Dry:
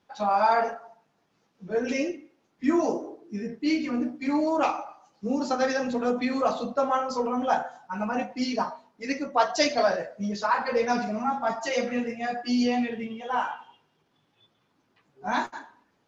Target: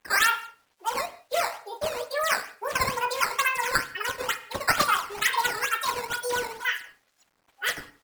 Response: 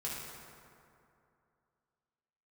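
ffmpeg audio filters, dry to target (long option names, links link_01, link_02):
-filter_complex "[0:a]highpass=350,aecho=1:1:98|196|294|392:0.126|0.0567|0.0255|0.0115,acrusher=samples=16:mix=1:aa=0.000001:lfo=1:lforange=25.6:lforate=1.1,asplit=2[link_01][link_02];[1:a]atrim=start_sample=2205,afade=type=out:start_time=0.41:duration=0.01,atrim=end_sample=18522,asetrate=42336,aresample=44100[link_03];[link_02][link_03]afir=irnorm=-1:irlink=0,volume=-14dB[link_04];[link_01][link_04]amix=inputs=2:normalize=0,acrusher=bits=10:mix=0:aa=0.000001,asetrate=88200,aresample=44100"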